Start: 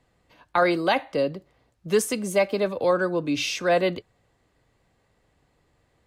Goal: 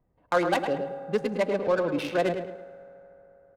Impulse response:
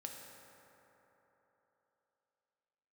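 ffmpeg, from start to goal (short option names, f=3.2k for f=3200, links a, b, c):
-filter_complex "[0:a]flanger=delay=1:depth=1.8:regen=85:speed=0.42:shape=sinusoidal,atempo=1.7,adynamicsmooth=sensitivity=4.5:basefreq=890,asplit=2[a][b];[b]adelay=107,lowpass=f=3.4k:p=1,volume=-7dB,asplit=2[c][d];[d]adelay=107,lowpass=f=3.4k:p=1,volume=0.38,asplit=2[e][f];[f]adelay=107,lowpass=f=3.4k:p=1,volume=0.38,asplit=2[g][h];[h]adelay=107,lowpass=f=3.4k:p=1,volume=0.38[i];[a][c][e][g][i]amix=inputs=5:normalize=0,asplit=2[j][k];[1:a]atrim=start_sample=2205[l];[k][l]afir=irnorm=-1:irlink=0,volume=-8dB[m];[j][m]amix=inputs=2:normalize=0"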